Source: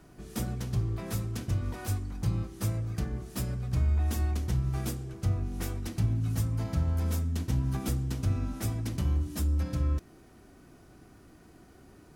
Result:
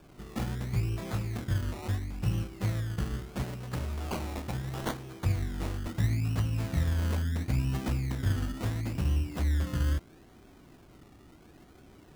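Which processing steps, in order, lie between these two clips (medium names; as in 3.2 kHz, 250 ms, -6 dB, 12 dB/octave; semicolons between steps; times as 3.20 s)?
3.43–5.25 s: frequency weighting D; decimation with a swept rate 22×, swing 60% 0.74 Hz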